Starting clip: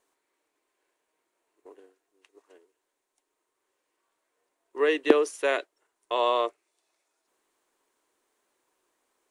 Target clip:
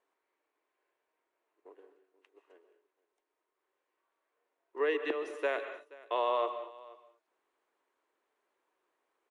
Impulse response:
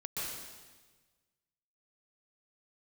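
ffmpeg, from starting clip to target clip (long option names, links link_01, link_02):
-filter_complex "[0:a]bass=frequency=250:gain=-11,treble=frequency=4000:gain=-15,alimiter=limit=-17dB:level=0:latency=1:release=353,aecho=1:1:477:0.0891,asplit=2[link_01][link_02];[1:a]atrim=start_sample=2205,afade=type=out:start_time=0.29:duration=0.01,atrim=end_sample=13230[link_03];[link_02][link_03]afir=irnorm=-1:irlink=0,volume=-8dB[link_04];[link_01][link_04]amix=inputs=2:normalize=0,volume=-5.5dB"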